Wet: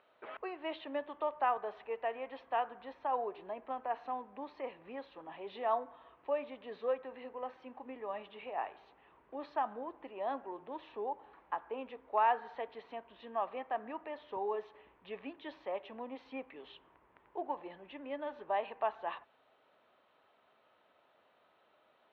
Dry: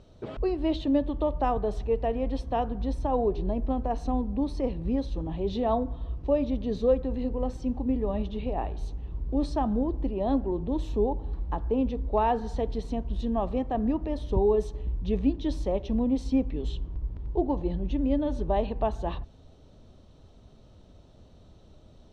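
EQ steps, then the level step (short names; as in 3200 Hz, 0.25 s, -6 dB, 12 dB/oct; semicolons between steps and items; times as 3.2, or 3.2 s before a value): HPF 1200 Hz 12 dB/oct; LPF 2400 Hz 24 dB/oct; +4.0 dB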